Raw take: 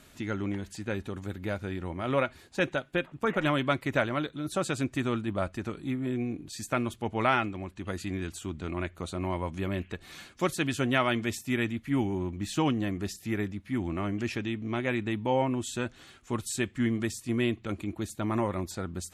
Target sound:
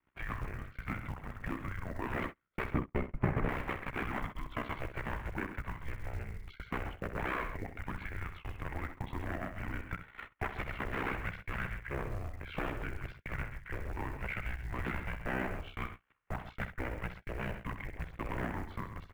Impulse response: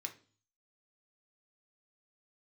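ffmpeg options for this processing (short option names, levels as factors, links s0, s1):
-filter_complex "[0:a]aeval=exprs='0.0447*(abs(mod(val(0)/0.0447+3,4)-2)-1)':c=same,aeval=exprs='val(0)*sin(2*PI*32*n/s)':c=same,acompressor=threshold=0.00501:ratio=16,equalizer=f=130:t=o:w=2.5:g=15,asplit=2[s0][s1];[s1]aecho=0:1:64.14|134.1:0.316|0.282[s2];[s0][s2]amix=inputs=2:normalize=0,agate=range=0.0141:threshold=0.00562:ratio=16:detection=peak,highpass=f=350:t=q:w=0.5412,highpass=f=350:t=q:w=1.307,lowpass=f=2500:t=q:w=0.5176,lowpass=f=2500:t=q:w=0.7071,lowpass=f=2500:t=q:w=1.932,afreqshift=-310,crystalizer=i=6.5:c=0,acrusher=bits=7:mode=log:mix=0:aa=0.000001,asettb=1/sr,asplit=3[s3][s4][s5];[s3]atrim=end=2.744[s6];[s4]atrim=start=2.74:end=3.49,asetpts=PTS-STARTPTS,afade=t=in:d=0.004:c=qsin,afade=t=out:st=0.746:d=0.004:c=qsin,tiltshelf=f=970:g=7.5[s7];[s5]atrim=start=3.486[s8];[s6][s7]acrossfade=d=0.004:c1=hsin:c2=qsin[s9];[s9][s8]acrossfade=d=0.004:c1=qsin:c2=hsin,volume=3.55"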